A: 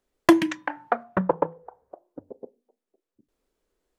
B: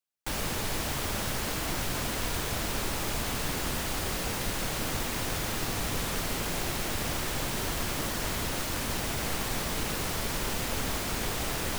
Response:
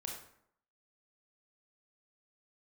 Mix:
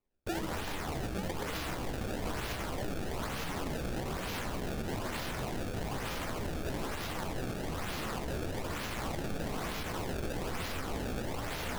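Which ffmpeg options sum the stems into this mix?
-filter_complex "[0:a]lowshelf=f=300:g=11,volume=0.316[s0];[1:a]volume=0.944,asplit=2[s1][s2];[s2]volume=0.531[s3];[2:a]atrim=start_sample=2205[s4];[s3][s4]afir=irnorm=-1:irlink=0[s5];[s0][s1][s5]amix=inputs=3:normalize=0,acrusher=samples=25:mix=1:aa=0.000001:lfo=1:lforange=40:lforate=1.1,flanger=delay=9.4:depth=7.8:regen=58:speed=1.4:shape=triangular,alimiter=level_in=1.58:limit=0.0631:level=0:latency=1:release=68,volume=0.631"

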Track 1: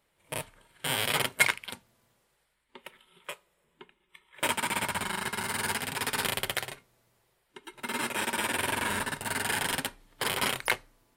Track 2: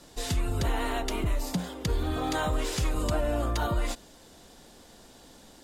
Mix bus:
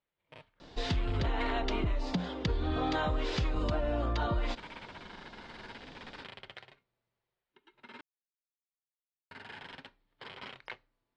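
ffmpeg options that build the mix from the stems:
-filter_complex "[0:a]volume=0.15,asplit=3[s0][s1][s2];[s0]atrim=end=8.01,asetpts=PTS-STARTPTS,afade=t=out:st=8.006:d=0.004:c=hsin[s3];[s1]atrim=start=8.01:end=9.31,asetpts=PTS-STARTPTS,volume=0[s4];[s2]atrim=start=9.31,asetpts=PTS-STARTPTS,afade=t=in:d=0.004:c=hsin[s5];[s3][s4][s5]concat=n=3:v=0:a=1[s6];[1:a]adelay=600,volume=1.12[s7];[s6][s7]amix=inputs=2:normalize=0,lowpass=f=4500:w=0.5412,lowpass=f=4500:w=1.3066,acompressor=threshold=0.0447:ratio=6"

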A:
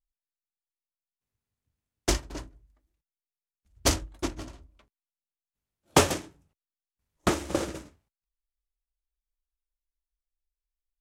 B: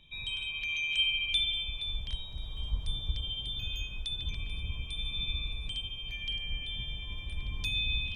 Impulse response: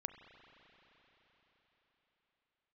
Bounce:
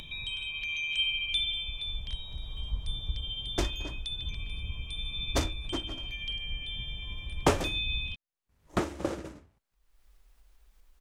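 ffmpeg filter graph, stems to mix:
-filter_complex "[0:a]highshelf=f=3200:g=-9,adelay=1500,volume=0.668[s0];[1:a]volume=0.75,asplit=2[s1][s2];[s2]volume=0.355[s3];[2:a]atrim=start_sample=2205[s4];[s3][s4]afir=irnorm=-1:irlink=0[s5];[s0][s1][s5]amix=inputs=3:normalize=0,acompressor=mode=upward:threshold=0.0224:ratio=2.5"

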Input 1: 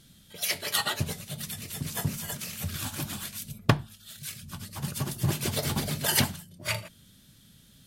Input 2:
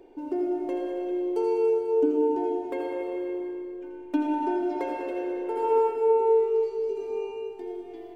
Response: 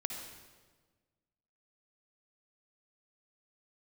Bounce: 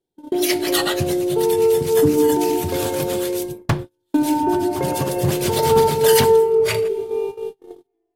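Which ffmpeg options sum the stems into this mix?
-filter_complex "[0:a]asoftclip=type=hard:threshold=0.126,volume=0.841,asplit=2[s0][s1];[s1]volume=0.0944[s2];[1:a]highshelf=f=2600:g=-10,volume=0.75,asplit=2[s3][s4];[s4]volume=0.562[s5];[2:a]atrim=start_sample=2205[s6];[s2][s5]amix=inputs=2:normalize=0[s7];[s7][s6]afir=irnorm=-1:irlink=0[s8];[s0][s3][s8]amix=inputs=3:normalize=0,agate=range=0.0112:threshold=0.0251:ratio=16:detection=peak,acontrast=84"

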